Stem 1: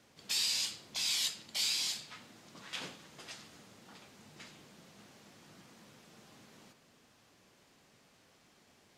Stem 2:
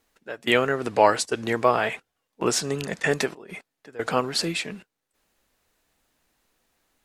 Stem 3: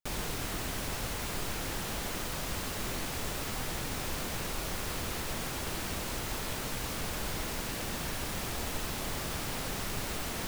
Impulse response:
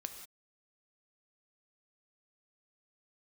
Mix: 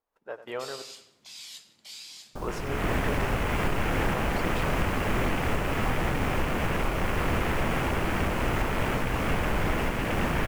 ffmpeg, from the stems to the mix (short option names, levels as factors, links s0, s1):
-filter_complex "[0:a]adelay=300,volume=0.211,asplit=2[s0][s1];[s1]volume=0.531[s2];[1:a]equalizer=f=250:t=o:w=1:g=-5,equalizer=f=500:t=o:w=1:g=5,equalizer=f=1000:t=o:w=1:g=9,equalizer=f=2000:t=o:w=1:g=-4,equalizer=f=4000:t=o:w=1:g=-5,equalizer=f=8000:t=o:w=1:g=-9,dynaudnorm=f=110:g=3:m=5.01,volume=0.1,asplit=3[s3][s4][s5];[s3]atrim=end=0.82,asetpts=PTS-STARTPTS,afade=t=out:st=0.816:d=0.004:c=hsin[s6];[s4]atrim=start=0.82:end=2.02,asetpts=PTS-STARTPTS,volume=0[s7];[s5]atrim=start=2.02,asetpts=PTS-STARTPTS,afade=t=in:d=0.004:c=hsin[s8];[s6][s7][s8]concat=n=3:v=0:a=1,asplit=2[s9][s10];[s10]volume=0.224[s11];[2:a]afwtdn=0.00891,dynaudnorm=f=330:g=3:m=3.76,adelay=2300,volume=1.12[s12];[3:a]atrim=start_sample=2205[s13];[s2][s13]afir=irnorm=-1:irlink=0[s14];[s11]aecho=0:1:93|186|279|372|465|558:1|0.45|0.202|0.0911|0.041|0.0185[s15];[s0][s9][s12][s14][s15]amix=inputs=5:normalize=0,alimiter=limit=0.168:level=0:latency=1:release=428"